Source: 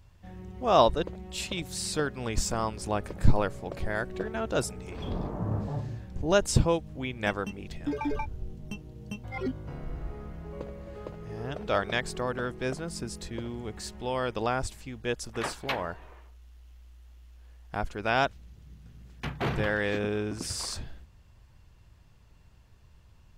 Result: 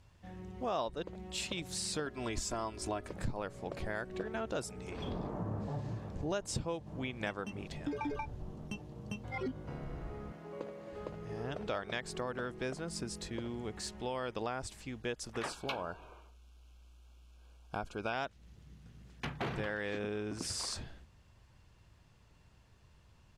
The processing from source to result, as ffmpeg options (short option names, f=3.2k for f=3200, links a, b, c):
-filter_complex "[0:a]asettb=1/sr,asplit=3[a][b][c];[a]atrim=end=2.064[d];[b]atrim=start=2.06:end=3.09,asetpts=PTS-STARTPTS,afade=t=in:d=0.004:c=qsin,afade=t=out:st=1.026:d=0.004:c=qsin,aecho=1:1:3:0.65,atrim=end_sample=45423[e];[c]atrim=start=3.086[f];[d][e]acrossfade=d=0.004:c1=hsin:c2=qsin[g];[g][f]acrossfade=d=0.004:c1=qsin:c2=hsin,asplit=2[h][i];[i]afade=t=in:st=5.33:d=0.01,afade=t=out:st=5.87:d=0.01,aecho=0:1:510|1020|1530|2040|2550|3060|3570|4080|4590|5100|5610|6120:0.316228|0.268794|0.228475|0.194203|0.165073|0.140312|0.119265|0.101375|0.0861691|0.0732437|0.0622572|0.0529186[j];[h][j]amix=inputs=2:normalize=0,asettb=1/sr,asplit=3[k][l][m];[k]atrim=end=10.324[n];[l]atrim=start=10.32:end=10.93,asetpts=PTS-STARTPTS,afade=t=in:d=0.004:c=qsin,afade=t=out:st=0.606:d=0.004:c=qsin,highpass=210[o];[m]atrim=start=10.926[p];[n][o]acrossfade=d=0.004:c1=hsin:c2=qsin[q];[q][p]acrossfade=d=0.004:c1=qsin:c2=hsin,asettb=1/sr,asplit=3[r][s][t];[r]atrim=end=15.494[u];[s]atrim=start=15.49:end=18.13,asetpts=PTS-STARTPTS,afade=t=in:d=0.004:c=qsin,afade=t=out:st=2.636:d=0.004:c=qsin,asuperstop=centerf=1900:order=12:qfactor=3.5[v];[t]atrim=start=18.126[w];[u][v]acrossfade=d=0.004:c1=hsin:c2=qsin[x];[x][w]acrossfade=d=0.004:c1=qsin:c2=hsin,lowpass=11k,lowshelf=f=74:g=-9.5,acompressor=threshold=-33dB:ratio=4,volume=-1.5dB"